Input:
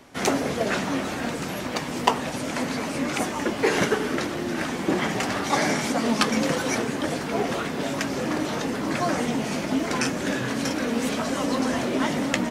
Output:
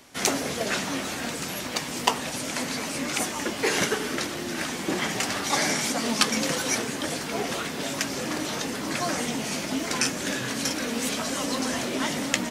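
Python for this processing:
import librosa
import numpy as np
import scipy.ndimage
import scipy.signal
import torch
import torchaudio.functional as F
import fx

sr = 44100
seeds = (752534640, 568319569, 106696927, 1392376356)

y = fx.high_shelf(x, sr, hz=2500.0, db=11.5)
y = F.gain(torch.from_numpy(y), -5.0).numpy()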